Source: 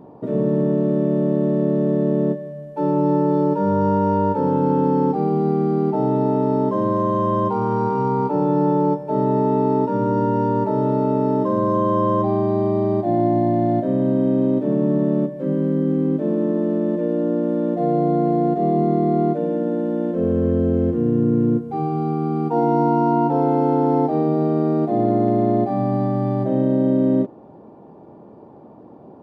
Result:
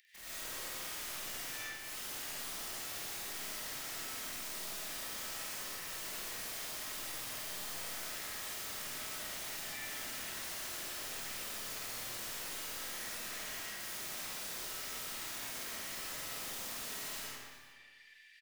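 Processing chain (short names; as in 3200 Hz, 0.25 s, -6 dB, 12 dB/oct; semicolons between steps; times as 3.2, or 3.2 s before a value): self-modulated delay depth 0.89 ms; steep high-pass 1800 Hz 96 dB/oct; reverse; compressor 6:1, threshold -47 dBFS, peak gain reduction 19 dB; reverse; limiter -41.5 dBFS, peak gain reduction 6.5 dB; wrapped overs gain 54 dB; time stretch by phase-locked vocoder 0.63×; wrapped overs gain 56 dB; reverse bouncing-ball echo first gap 50 ms, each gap 1.3×, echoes 5; digital reverb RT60 1.5 s, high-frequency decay 0.75×, pre-delay 55 ms, DRR -9 dB; gain +9.5 dB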